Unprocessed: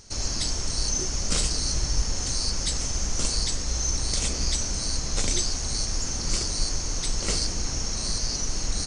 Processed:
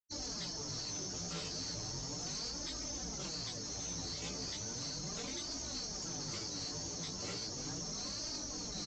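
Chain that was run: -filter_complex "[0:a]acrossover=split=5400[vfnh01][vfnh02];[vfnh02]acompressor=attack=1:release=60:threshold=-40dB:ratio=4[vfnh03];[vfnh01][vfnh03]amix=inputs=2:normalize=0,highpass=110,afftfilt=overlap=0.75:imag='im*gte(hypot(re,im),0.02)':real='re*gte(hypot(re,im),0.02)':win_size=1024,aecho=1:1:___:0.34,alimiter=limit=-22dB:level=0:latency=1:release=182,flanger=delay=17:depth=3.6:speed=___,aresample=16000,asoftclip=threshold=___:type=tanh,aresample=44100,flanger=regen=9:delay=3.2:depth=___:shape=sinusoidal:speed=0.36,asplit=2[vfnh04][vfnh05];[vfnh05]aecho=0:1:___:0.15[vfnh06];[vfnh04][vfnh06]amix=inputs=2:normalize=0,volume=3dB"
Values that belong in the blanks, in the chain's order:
6.7, 2.3, -38dB, 8.6, 323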